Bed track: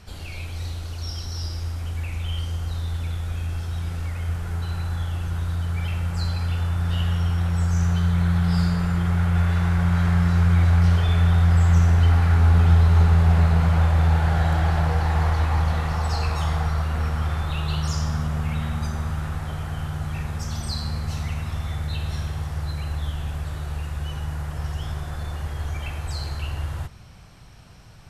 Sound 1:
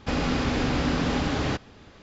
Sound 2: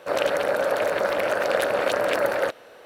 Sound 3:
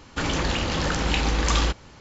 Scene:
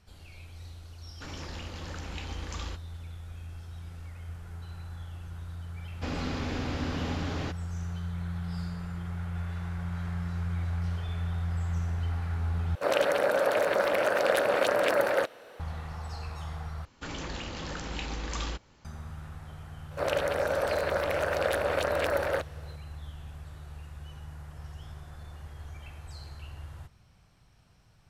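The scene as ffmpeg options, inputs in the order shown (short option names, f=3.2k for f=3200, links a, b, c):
-filter_complex "[3:a]asplit=2[a][b];[2:a]asplit=2[c][d];[0:a]volume=-14.5dB,asplit=3[e][f][g];[e]atrim=end=12.754[h];[c]atrim=end=2.85,asetpts=PTS-STARTPTS,volume=-2.5dB[i];[f]atrim=start=15.596:end=16.854[j];[b]atrim=end=2,asetpts=PTS-STARTPTS,volume=-12.5dB[k];[g]atrim=start=18.846[l];[a]atrim=end=2,asetpts=PTS-STARTPTS,volume=-17dB,afade=t=in:d=0.004:c=hsin,afade=t=out:st=1.996:d=0.004:c=hsin,adelay=1040[m];[1:a]atrim=end=2.02,asetpts=PTS-STARTPTS,volume=-8.5dB,afade=t=in:d=0.004:c=hsin,afade=t=out:st=2.016:d=0.004:c=hsin,adelay=5950[n];[d]atrim=end=2.85,asetpts=PTS-STARTPTS,volume=-5.5dB,afade=t=in:d=0.004:c=hsin,afade=t=out:st=2.846:d=0.004:c=hsin,adelay=19910[o];[h][i]acrossfade=d=0.004:c1=hsin:c2=hsin[p];[p][j]acrossfade=d=0.004:c1=hsin:c2=hsin[q];[q][k]acrossfade=d=0.004:c1=hsin:c2=hsin[r];[r][l]acrossfade=d=0.004:c1=hsin:c2=hsin[s];[s][m][n][o]amix=inputs=4:normalize=0"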